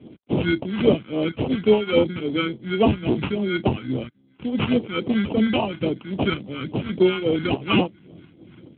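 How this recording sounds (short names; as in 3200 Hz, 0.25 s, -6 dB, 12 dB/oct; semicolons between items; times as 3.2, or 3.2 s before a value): tremolo triangle 2.6 Hz, depth 70%; aliases and images of a low sample rate 1800 Hz, jitter 0%; phasing stages 2, 3.6 Hz, lowest notch 560–1600 Hz; AMR-NB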